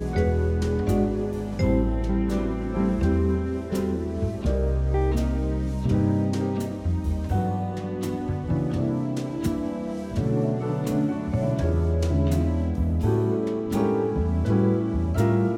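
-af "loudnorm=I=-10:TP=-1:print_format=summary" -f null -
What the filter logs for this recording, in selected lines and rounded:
Input Integrated:    -24.9 LUFS
Input True Peak:     -10.0 dBTP
Input LRA:             2.6 LU
Input Threshold:     -34.9 LUFS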